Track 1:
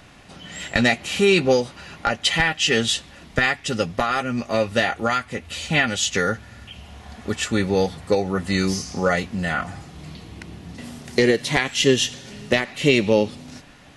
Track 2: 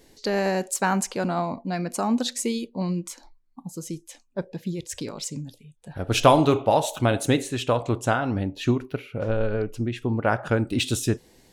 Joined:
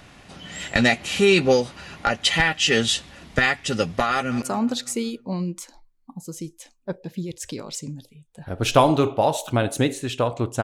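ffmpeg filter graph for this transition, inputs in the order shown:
-filter_complex "[0:a]apad=whole_dur=10.63,atrim=end=10.63,atrim=end=4.422[s0];[1:a]atrim=start=1.908:end=8.12[s1];[s0][s1]acrossfade=d=0.004:c1=hsin:c2=hsin,asplit=2[s2][s3];[s3]afade=t=in:st=4.13:d=0.01,afade=t=out:st=4.42:d=0.01,aecho=0:1:180|360|540|720|900:0.16788|0.0923342|0.0507838|0.0279311|0.0153621[s4];[s2][s4]amix=inputs=2:normalize=0"

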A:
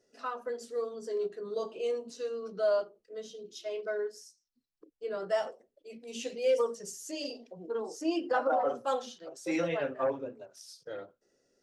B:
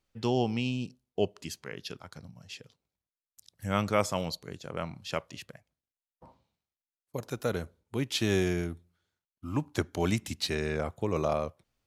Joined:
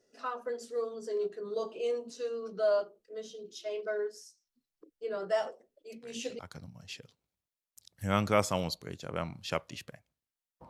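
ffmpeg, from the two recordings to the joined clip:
-filter_complex "[1:a]asplit=2[s0][s1];[0:a]apad=whole_dur=10.69,atrim=end=10.69,atrim=end=6.392[s2];[s1]atrim=start=1.998:end=6.3[s3];[s0]atrim=start=1.53:end=2,asetpts=PTS-STARTPTS,volume=0.168,afade=t=in:d=0.004:c=hsin,afade=t=out:st=0.466:d=0.004:c=hsin,adelay=5920[s4];[s2][s3]acrossfade=d=0.004:c1=hsin:c2=hsin[s5];[s5][s4]amix=inputs=2:normalize=0"

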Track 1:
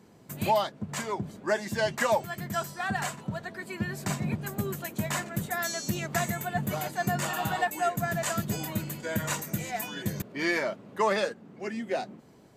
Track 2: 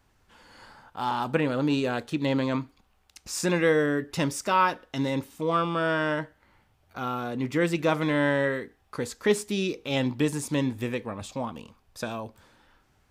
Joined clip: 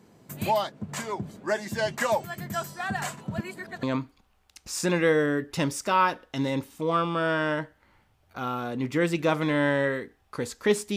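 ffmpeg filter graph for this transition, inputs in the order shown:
-filter_complex "[0:a]apad=whole_dur=10.96,atrim=end=10.96,asplit=2[s0][s1];[s0]atrim=end=3.382[s2];[s1]atrim=start=3.378:end=3.832,asetpts=PTS-STARTPTS,areverse[s3];[1:a]atrim=start=2.428:end=9.56[s4];[s2][s3]acrossfade=d=0.004:c1=hsin:c2=hsin[s5];[s5][s4]acrossfade=d=0.004:c1=hsin:c2=hsin"

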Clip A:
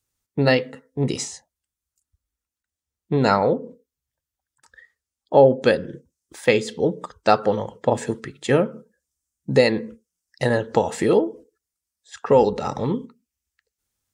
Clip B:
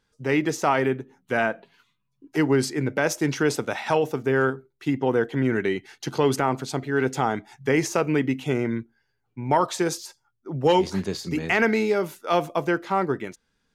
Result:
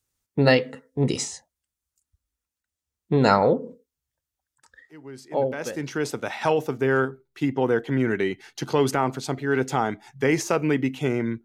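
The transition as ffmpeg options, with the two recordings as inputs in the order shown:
-filter_complex "[0:a]apad=whole_dur=11.44,atrim=end=11.44,atrim=end=6.46,asetpts=PTS-STARTPTS[s0];[1:a]atrim=start=1.93:end=8.89,asetpts=PTS-STARTPTS[s1];[s0][s1]acrossfade=d=1.98:c1=qua:c2=qua"

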